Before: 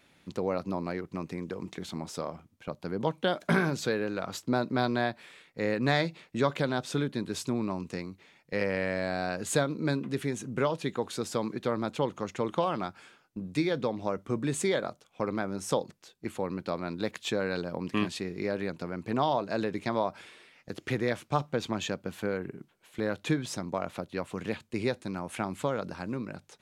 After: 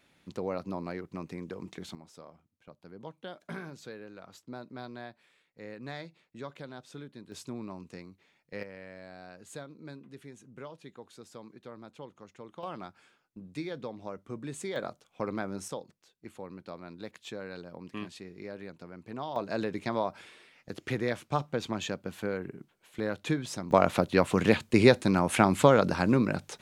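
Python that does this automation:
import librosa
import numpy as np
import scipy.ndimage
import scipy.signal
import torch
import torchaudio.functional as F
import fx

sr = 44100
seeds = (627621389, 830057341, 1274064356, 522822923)

y = fx.gain(x, sr, db=fx.steps((0.0, -3.5), (1.95, -15.0), (7.32, -9.0), (8.63, -16.5), (12.63, -9.0), (14.76, -2.5), (15.68, -10.5), (19.36, -1.5), (23.71, 10.5)))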